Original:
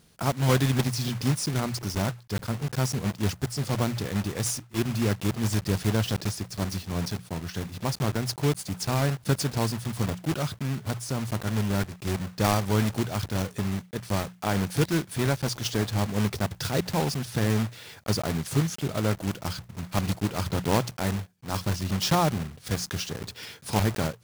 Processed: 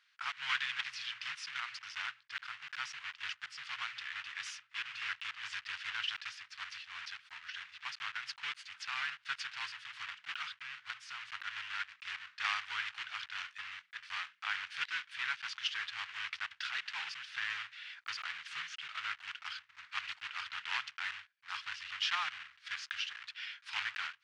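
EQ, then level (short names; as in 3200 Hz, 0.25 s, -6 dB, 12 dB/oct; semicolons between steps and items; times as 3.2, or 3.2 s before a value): inverse Chebyshev high-pass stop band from 600 Hz, stop band 50 dB; dynamic EQ 2900 Hz, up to +5 dB, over -53 dBFS, Q 2.9; tape spacing loss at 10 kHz 41 dB; +8.0 dB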